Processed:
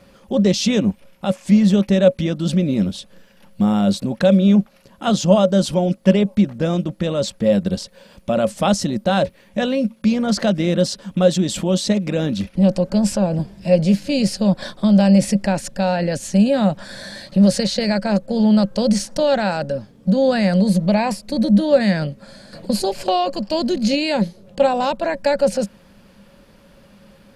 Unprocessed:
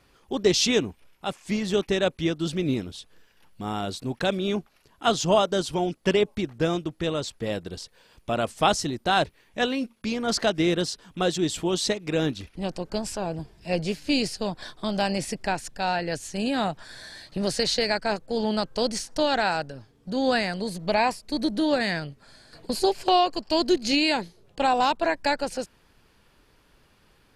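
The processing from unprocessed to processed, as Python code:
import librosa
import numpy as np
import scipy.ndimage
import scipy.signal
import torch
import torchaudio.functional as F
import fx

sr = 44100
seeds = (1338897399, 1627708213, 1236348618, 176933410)

p1 = fx.over_compress(x, sr, threshold_db=-33.0, ratio=-1.0)
p2 = x + F.gain(torch.from_numpy(p1), -2.0).numpy()
p3 = fx.quant_float(p2, sr, bits=8)
p4 = fx.small_body(p3, sr, hz=(200.0, 550.0), ring_ms=85, db=17)
y = F.gain(torch.from_numpy(p4), -1.5).numpy()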